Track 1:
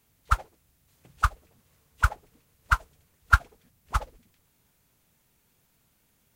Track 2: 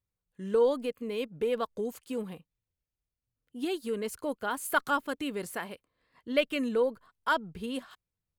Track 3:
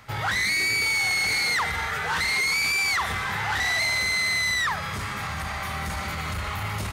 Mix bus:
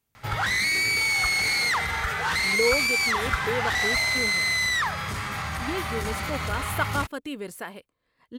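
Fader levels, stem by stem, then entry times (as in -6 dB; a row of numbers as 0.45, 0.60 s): -10.0, 0.0, 0.0 dB; 0.00, 2.05, 0.15 s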